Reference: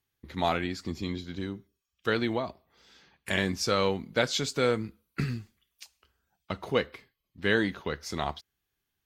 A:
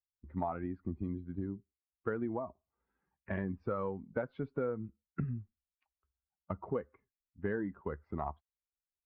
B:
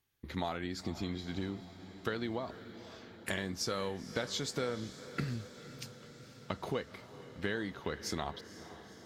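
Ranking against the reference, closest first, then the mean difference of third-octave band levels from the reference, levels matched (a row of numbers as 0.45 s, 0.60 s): B, A; 7.0 dB, 10.0 dB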